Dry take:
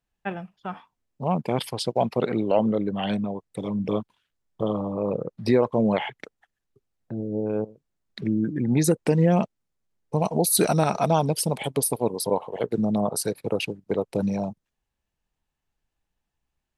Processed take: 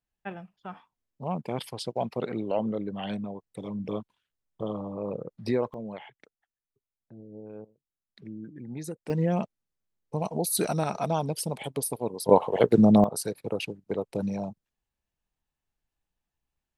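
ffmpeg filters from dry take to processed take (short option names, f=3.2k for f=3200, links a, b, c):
-af "asetnsamples=n=441:p=0,asendcmd='5.74 volume volume -16.5dB;9.1 volume volume -6.5dB;12.29 volume volume 6dB;13.04 volume volume -5dB',volume=-7dB"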